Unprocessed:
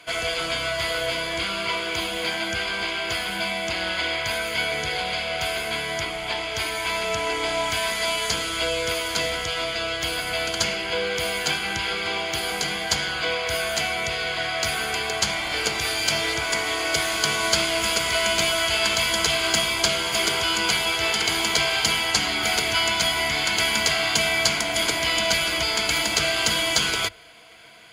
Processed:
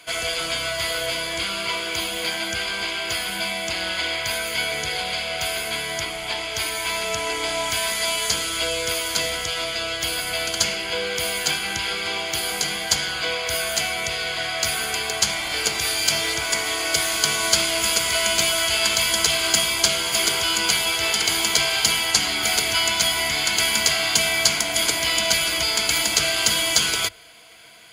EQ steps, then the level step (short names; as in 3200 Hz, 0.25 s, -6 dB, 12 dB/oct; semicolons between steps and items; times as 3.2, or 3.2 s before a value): high shelf 5000 Hz +10 dB; -1.5 dB